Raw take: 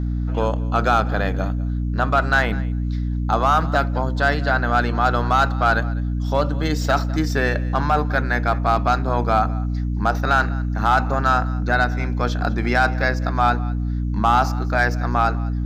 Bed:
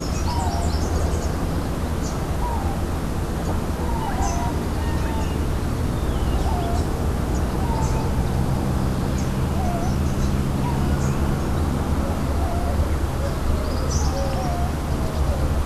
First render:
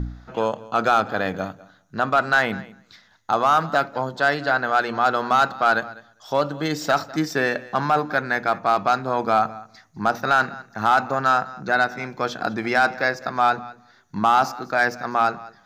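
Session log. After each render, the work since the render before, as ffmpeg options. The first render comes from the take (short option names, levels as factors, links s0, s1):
-af "bandreject=f=60:t=h:w=4,bandreject=f=120:t=h:w=4,bandreject=f=180:t=h:w=4,bandreject=f=240:t=h:w=4,bandreject=f=300:t=h:w=4"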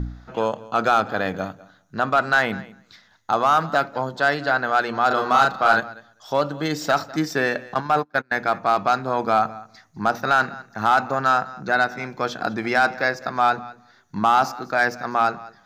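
-filter_complex "[0:a]asettb=1/sr,asplit=3[s0][s1][s2];[s0]atrim=end=5.074[s3];[s1]atrim=start=5.07:end=5.8,asetpts=PTS-STARTPTS,afade=t=in:d=0.004:c=qsin,afade=t=out:st=0.726:d=0.004:c=qsin,asplit=2[s4][s5];[s5]adelay=36,volume=0.708[s6];[s4][s6]amix=inputs=2:normalize=0,atrim=end_sample=32193[s7];[s2]atrim=start=5.796[s8];[s3][s7]acrossfade=d=0.004:c1=hsin:c2=qsin[s9];[s9][s8]acrossfade=d=0.004:c1=qsin:c2=hsin,asettb=1/sr,asplit=3[s10][s11][s12];[s10]atrim=end=7.744[s13];[s11]atrim=start=7.74:end=8.36,asetpts=PTS-STARTPTS,afade=t=in:d=0.004:c=qsin,afade=t=out:st=0.616:d=0.004:c=qsin,agate=range=0.0282:threshold=0.0631:ratio=16:release=100:detection=peak[s14];[s12]atrim=start=8.356[s15];[s13][s14]acrossfade=d=0.004:c1=hsin:c2=qsin[s16];[s16][s15]acrossfade=d=0.004:c1=qsin:c2=hsin"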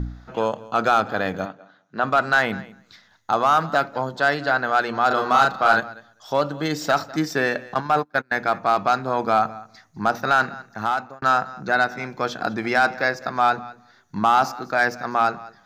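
-filter_complex "[0:a]asplit=3[s0][s1][s2];[s0]afade=t=out:st=1.45:d=0.02[s3];[s1]highpass=220,lowpass=3800,afade=t=in:st=1.45:d=0.02,afade=t=out:st=2.02:d=0.02[s4];[s2]afade=t=in:st=2.02:d=0.02[s5];[s3][s4][s5]amix=inputs=3:normalize=0,asplit=2[s6][s7];[s6]atrim=end=11.22,asetpts=PTS-STARTPTS,afade=t=out:st=10.67:d=0.55[s8];[s7]atrim=start=11.22,asetpts=PTS-STARTPTS,afade=t=in:d=0.004:c=hsin[s9];[s8][s9]concat=n=2:v=0:a=1"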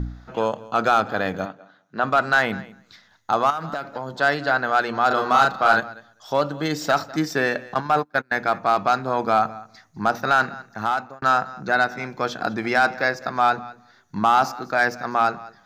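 -filter_complex "[0:a]asettb=1/sr,asplit=3[s0][s1][s2];[s0]atrim=end=3.504[s3];[s1]atrim=start=3.5:end=4.21,asetpts=PTS-STARTPTS,afade=t=in:d=0.004:c=qsin,afade=t=out:st=0.706:d=0.004:c=qsin,acompressor=threshold=0.0631:ratio=6:attack=3.2:release=140:knee=1:detection=peak[s4];[s2]atrim=start=4.206[s5];[s3][s4]acrossfade=d=0.004:c1=hsin:c2=qsin[s6];[s6][s5]acrossfade=d=0.004:c1=qsin:c2=hsin"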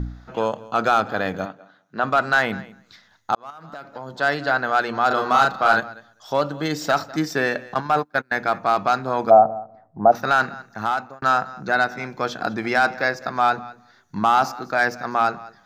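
-filter_complex "[0:a]asplit=3[s0][s1][s2];[s0]afade=t=out:st=9.29:d=0.02[s3];[s1]lowpass=f=660:t=q:w=4.1,afade=t=in:st=9.29:d=0.02,afade=t=out:st=10.11:d=0.02[s4];[s2]afade=t=in:st=10.11:d=0.02[s5];[s3][s4][s5]amix=inputs=3:normalize=0,asplit=2[s6][s7];[s6]atrim=end=3.35,asetpts=PTS-STARTPTS,afade=t=out:st=3.346:d=0.004:c=hsin[s8];[s7]atrim=start=3.35,asetpts=PTS-STARTPTS,afade=t=in:d=1.04[s9];[s8][s9]concat=n=2:v=0:a=1"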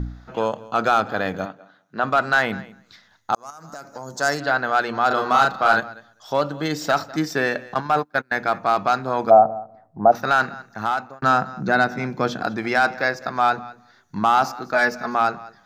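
-filter_complex "[0:a]asettb=1/sr,asplit=3[s0][s1][s2];[s0]atrim=end=3.344[s3];[s1]atrim=start=3.34:end=4.4,asetpts=PTS-STARTPTS,afade=t=in:d=0.004:c=qsin,afade=t=out:st=1.056:d=0.004:c=qsin,highshelf=f=4600:t=q:w=3:g=11[s4];[s2]atrim=start=4.396[s5];[s3][s4]acrossfade=d=0.004:c1=hsin:c2=qsin[s6];[s6][s5]acrossfade=d=0.004:c1=qsin:c2=hsin,asettb=1/sr,asplit=3[s7][s8][s9];[s7]atrim=end=11.234[s10];[s8]atrim=start=11.23:end=12.42,asetpts=PTS-STARTPTS,afade=t=in:d=0.004:c=qsin,afade=t=out:st=1.186:d=0.004:c=qsin,equalizer=f=180:w=0.59:g=9[s11];[s9]atrim=start=12.416[s12];[s10][s11]acrossfade=d=0.004:c1=hsin:c2=qsin[s13];[s13][s12]acrossfade=d=0.004:c1=qsin:c2=hsin,asettb=1/sr,asplit=3[s14][s15][s16];[s14]atrim=end=14.734[s17];[s15]atrim=start=14.73:end=15.15,asetpts=PTS-STARTPTS,afade=t=in:d=0.004:c=qsin,afade=t=out:st=0.416:d=0.004:c=qsin,aecho=1:1:4.7:0.65,atrim=end_sample=18522[s18];[s16]atrim=start=15.146[s19];[s17][s18]acrossfade=d=0.004:c1=hsin:c2=qsin[s20];[s20][s19]acrossfade=d=0.004:c1=qsin:c2=hsin"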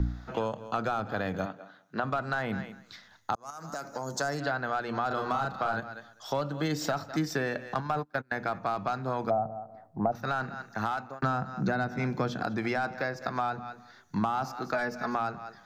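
-filter_complex "[0:a]acrossover=split=1200[s0][s1];[s1]alimiter=limit=0.112:level=0:latency=1:release=196[s2];[s0][s2]amix=inputs=2:normalize=0,acrossover=split=160[s3][s4];[s4]acompressor=threshold=0.0355:ratio=4[s5];[s3][s5]amix=inputs=2:normalize=0"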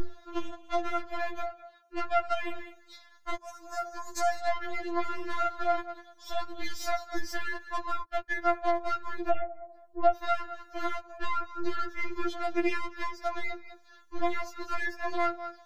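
-af "aeval=exprs='0.211*(cos(1*acos(clip(val(0)/0.211,-1,1)))-cos(1*PI/2))+0.0299*(cos(6*acos(clip(val(0)/0.211,-1,1)))-cos(6*PI/2))':c=same,afftfilt=real='re*4*eq(mod(b,16),0)':imag='im*4*eq(mod(b,16),0)':win_size=2048:overlap=0.75"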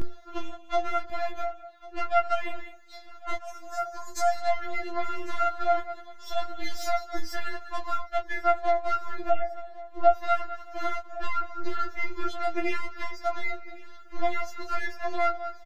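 -filter_complex "[0:a]asplit=2[s0][s1];[s1]adelay=16,volume=0.631[s2];[s0][s2]amix=inputs=2:normalize=0,aecho=1:1:1099|2198|3297|4396:0.0944|0.0538|0.0307|0.0175"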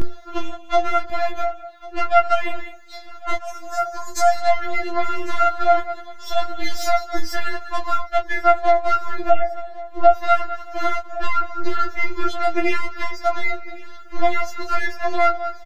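-af "volume=2.66,alimiter=limit=0.891:level=0:latency=1"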